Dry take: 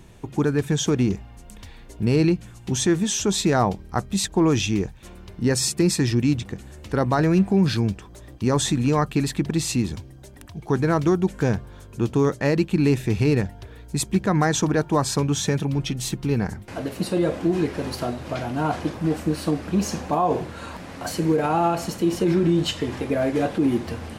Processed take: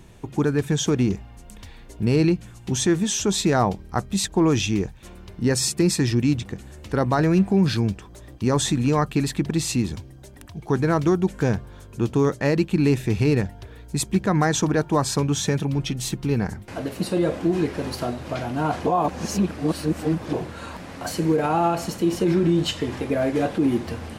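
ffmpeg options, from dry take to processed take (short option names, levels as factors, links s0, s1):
-filter_complex "[0:a]asplit=3[s0][s1][s2];[s0]atrim=end=18.862[s3];[s1]atrim=start=18.858:end=20.332,asetpts=PTS-STARTPTS,areverse[s4];[s2]atrim=start=20.328[s5];[s3][s4]acrossfade=d=0.004:c1=hsin:c2=hsin[s6];[s6][s5]acrossfade=d=0.004:c1=hsin:c2=hsin"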